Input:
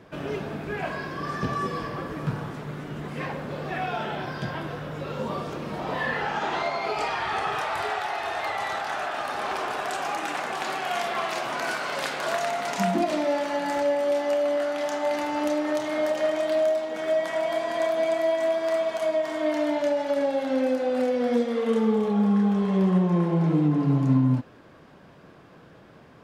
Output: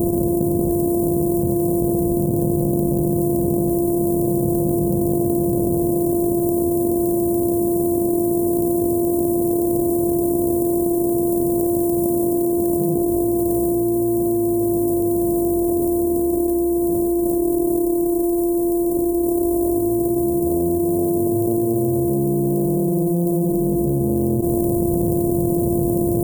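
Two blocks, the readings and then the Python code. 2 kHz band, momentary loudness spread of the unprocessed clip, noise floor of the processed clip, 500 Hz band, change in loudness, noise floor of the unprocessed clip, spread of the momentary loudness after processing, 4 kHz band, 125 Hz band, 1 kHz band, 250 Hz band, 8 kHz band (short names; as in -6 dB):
under -40 dB, 10 LU, -20 dBFS, +5.5 dB, +7.0 dB, -51 dBFS, 0 LU, under -25 dB, +6.0 dB, n/a, +10.5 dB, +13.0 dB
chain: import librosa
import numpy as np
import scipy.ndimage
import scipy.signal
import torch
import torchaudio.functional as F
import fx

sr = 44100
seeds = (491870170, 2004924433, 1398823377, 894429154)

y = np.r_[np.sort(x[:len(x) // 128 * 128].reshape(-1, 128), axis=1).ravel(), x[len(x) // 128 * 128:]]
y = scipy.signal.sosfilt(scipy.signal.cheby2(4, 80, [1800.0, 3600.0], 'bandstop', fs=sr, output='sos'), y)
y = fx.env_flatten(y, sr, amount_pct=100)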